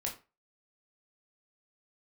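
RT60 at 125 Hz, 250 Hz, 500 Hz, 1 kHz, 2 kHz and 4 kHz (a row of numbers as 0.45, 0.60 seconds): 0.30, 0.25, 0.30, 0.30, 0.30, 0.25 seconds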